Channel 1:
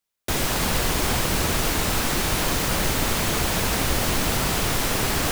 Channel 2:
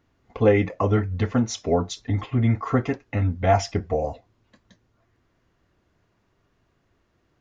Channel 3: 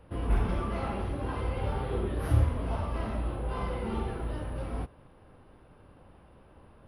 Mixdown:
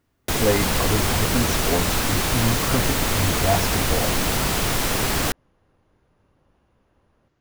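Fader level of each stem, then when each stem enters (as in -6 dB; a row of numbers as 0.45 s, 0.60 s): +1.0 dB, -3.0 dB, -9.5 dB; 0.00 s, 0.00 s, 0.40 s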